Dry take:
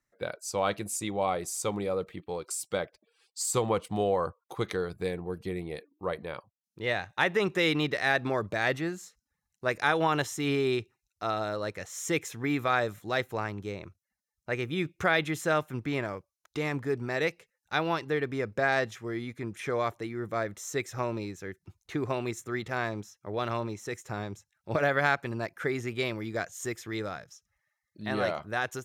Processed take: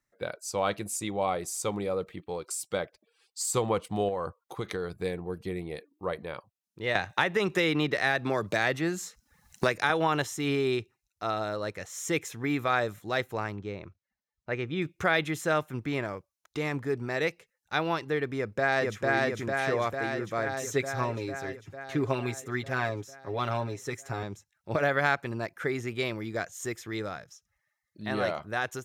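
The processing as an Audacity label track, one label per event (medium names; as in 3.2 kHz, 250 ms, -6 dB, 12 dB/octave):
4.080000	4.940000	compression, threshold -27 dBFS
6.950000	9.900000	three bands compressed up and down depth 100%
13.560000	14.820000	distance through air 120 m
18.360000	19.030000	echo throw 450 ms, feedback 70%, level -0.5 dB
20.460000	24.230000	comb 7.3 ms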